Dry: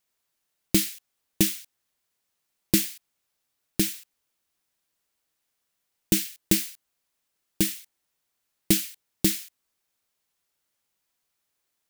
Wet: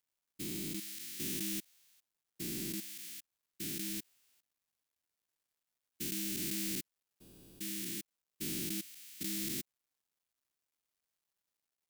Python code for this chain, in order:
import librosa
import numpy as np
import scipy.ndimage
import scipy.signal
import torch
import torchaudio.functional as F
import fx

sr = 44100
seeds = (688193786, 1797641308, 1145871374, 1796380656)

y = fx.spec_steps(x, sr, hold_ms=400)
y = fx.quant_dither(y, sr, seeds[0], bits=12, dither='none')
y = y * 10.0 ** (-3.0 / 20.0)